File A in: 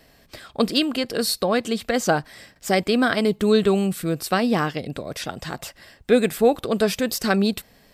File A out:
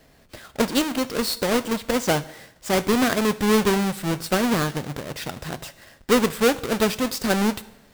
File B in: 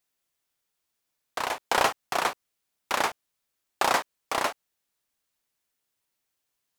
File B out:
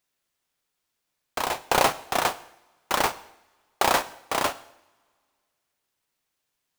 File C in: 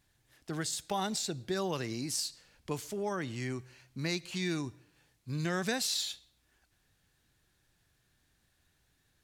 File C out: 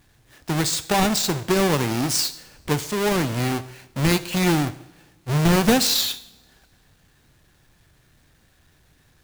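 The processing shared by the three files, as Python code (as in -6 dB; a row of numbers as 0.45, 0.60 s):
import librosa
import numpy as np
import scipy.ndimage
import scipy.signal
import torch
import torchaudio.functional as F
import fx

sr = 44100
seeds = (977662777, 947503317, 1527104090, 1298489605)

y = fx.halfwave_hold(x, sr)
y = fx.rev_double_slope(y, sr, seeds[0], early_s=0.69, late_s=2.2, knee_db=-21, drr_db=13.5)
y = librosa.util.normalize(y) * 10.0 ** (-9 / 20.0)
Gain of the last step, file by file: -5.5, -2.0, +9.0 dB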